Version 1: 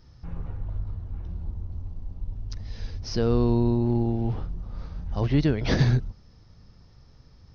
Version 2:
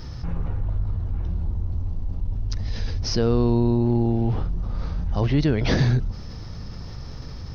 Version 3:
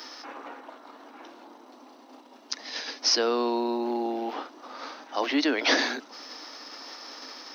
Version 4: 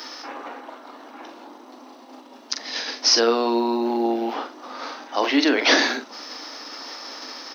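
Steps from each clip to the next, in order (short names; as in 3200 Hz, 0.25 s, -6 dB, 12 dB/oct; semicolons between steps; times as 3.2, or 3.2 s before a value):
fast leveller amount 50%
steep high-pass 270 Hz 72 dB/oct; bell 390 Hz -11.5 dB 1.1 oct; gain +6.5 dB
doubler 43 ms -8 dB; gain +5.5 dB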